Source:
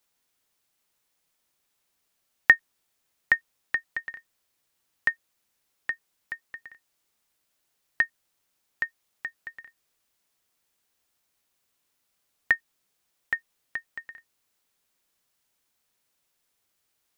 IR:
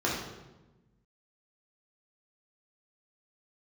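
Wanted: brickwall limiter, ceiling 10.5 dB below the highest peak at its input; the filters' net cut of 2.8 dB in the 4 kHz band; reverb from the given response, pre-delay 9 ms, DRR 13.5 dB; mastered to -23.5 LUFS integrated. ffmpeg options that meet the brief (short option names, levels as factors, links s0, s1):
-filter_complex "[0:a]equalizer=f=4000:t=o:g=-4,alimiter=limit=0.211:level=0:latency=1,asplit=2[s0][s1];[1:a]atrim=start_sample=2205,adelay=9[s2];[s1][s2]afir=irnorm=-1:irlink=0,volume=0.0596[s3];[s0][s3]amix=inputs=2:normalize=0,volume=3.35"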